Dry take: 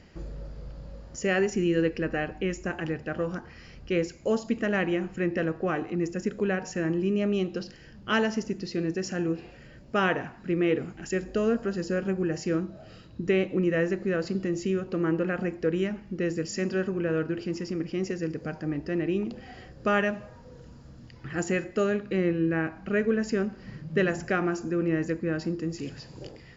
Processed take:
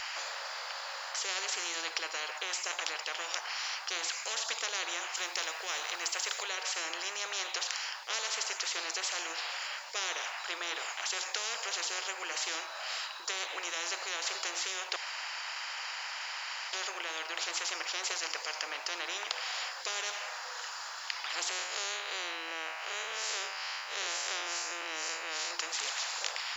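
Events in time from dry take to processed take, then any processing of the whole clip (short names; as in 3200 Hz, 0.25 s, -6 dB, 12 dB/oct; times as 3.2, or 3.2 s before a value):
5.15–6.43 tilt +2 dB/oct
14.96–16.73 room tone
21.49–25.51 time blur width 98 ms
whole clip: steep high-pass 870 Hz 36 dB/oct; spectral compressor 10:1; gain +3 dB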